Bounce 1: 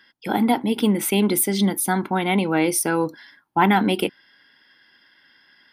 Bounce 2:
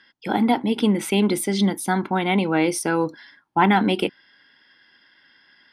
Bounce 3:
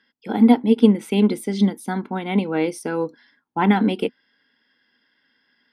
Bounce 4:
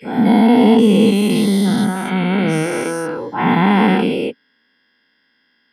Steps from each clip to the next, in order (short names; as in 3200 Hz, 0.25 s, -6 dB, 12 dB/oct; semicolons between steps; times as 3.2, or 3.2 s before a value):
LPF 7400 Hz 12 dB/oct
small resonant body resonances 240/450 Hz, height 10 dB, ringing for 45 ms; upward expander 1.5:1, over -25 dBFS; gain -1 dB
spectral dilation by 0.48 s; gain -2.5 dB